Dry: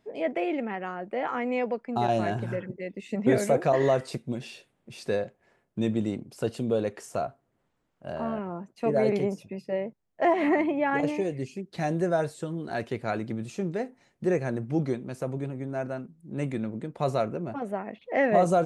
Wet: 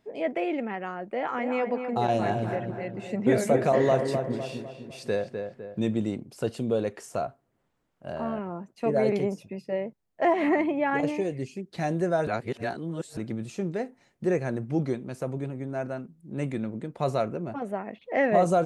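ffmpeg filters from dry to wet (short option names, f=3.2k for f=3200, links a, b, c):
-filter_complex "[0:a]asettb=1/sr,asplit=3[a][b][c];[a]atrim=end=1.124[d];[b]atrim=start=1.12:end=5.8,asetpts=PTS-STARTPTS,afade=t=in:d=0.004:c=qsin,afade=t=out:st=4.676:d=0.004:c=qsin,asplit=2[e][f];[f]adelay=253,lowpass=f=2.1k:p=1,volume=-6dB,asplit=2[g][h];[h]adelay=253,lowpass=f=2.1k:p=1,volume=0.48,asplit=2[i][j];[j]adelay=253,lowpass=f=2.1k:p=1,volume=0.48,asplit=2[k][l];[l]adelay=253,lowpass=f=2.1k:p=1,volume=0.48,asplit=2[m][n];[n]adelay=253,lowpass=f=2.1k:p=1,volume=0.48,asplit=2[o][p];[p]adelay=253,lowpass=f=2.1k:p=1,volume=0.48[q];[e][g][i][k][m][o][q]amix=inputs=7:normalize=0,atrim=end_sample=206388[r];[c]atrim=start=5.796[s];[d][r]acrossfade=d=0.004:c1=hsin:c2=qsin[t];[t][s]acrossfade=d=0.004:c1=qsin:c2=hsin,asplit=3[u][v][w];[u]atrim=end=12.272[x];[v]atrim=start=12.268:end=13.172,asetpts=PTS-STARTPTS,areverse[y];[w]atrim=start=13.168[z];[x][y]acrossfade=d=0.004:c1=hsin:c2=hsin[aa];[aa][z]acrossfade=d=0.004:c1=hsin:c2=hsin"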